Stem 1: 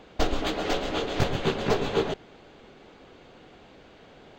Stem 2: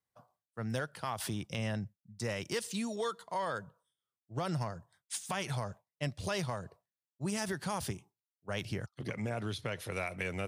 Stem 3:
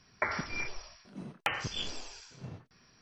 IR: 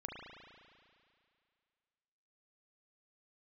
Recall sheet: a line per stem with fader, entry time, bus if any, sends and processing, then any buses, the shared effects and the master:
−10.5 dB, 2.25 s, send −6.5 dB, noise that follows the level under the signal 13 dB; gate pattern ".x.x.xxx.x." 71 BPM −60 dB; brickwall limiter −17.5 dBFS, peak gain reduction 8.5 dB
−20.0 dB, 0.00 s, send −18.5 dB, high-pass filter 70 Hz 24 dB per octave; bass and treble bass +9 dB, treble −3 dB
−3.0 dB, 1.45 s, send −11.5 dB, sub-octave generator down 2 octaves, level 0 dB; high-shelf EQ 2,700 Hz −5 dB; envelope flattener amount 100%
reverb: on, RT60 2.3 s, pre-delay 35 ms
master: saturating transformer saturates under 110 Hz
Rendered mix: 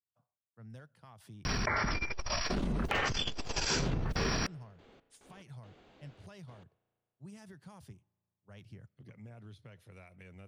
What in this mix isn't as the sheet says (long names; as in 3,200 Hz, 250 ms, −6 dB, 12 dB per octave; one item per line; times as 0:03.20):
stem 1: missing noise that follows the level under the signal 13 dB
stem 3: send −11.5 dB → −22.5 dB
reverb return −9.0 dB